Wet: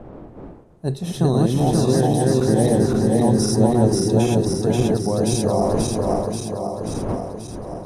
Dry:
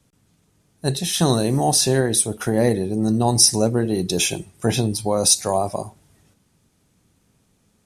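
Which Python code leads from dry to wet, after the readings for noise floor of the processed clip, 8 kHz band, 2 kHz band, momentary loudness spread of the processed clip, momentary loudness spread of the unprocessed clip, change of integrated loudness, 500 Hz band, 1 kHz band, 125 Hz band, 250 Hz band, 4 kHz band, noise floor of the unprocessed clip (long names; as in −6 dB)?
−40 dBFS, −9.5 dB, −5.0 dB, 10 LU, 10 LU, 0.0 dB, +3.0 dB, +0.5 dB, +4.5 dB, +4.5 dB, −9.0 dB, −64 dBFS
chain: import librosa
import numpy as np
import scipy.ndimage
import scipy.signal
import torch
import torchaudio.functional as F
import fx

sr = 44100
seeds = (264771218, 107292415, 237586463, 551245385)

y = fx.reverse_delay_fb(x, sr, ms=267, feedback_pct=79, wet_db=0)
y = fx.dmg_wind(y, sr, seeds[0], corner_hz=560.0, level_db=-31.0)
y = fx.tilt_shelf(y, sr, db=7.5, hz=1200.0)
y = y * 10.0 ** (-8.0 / 20.0)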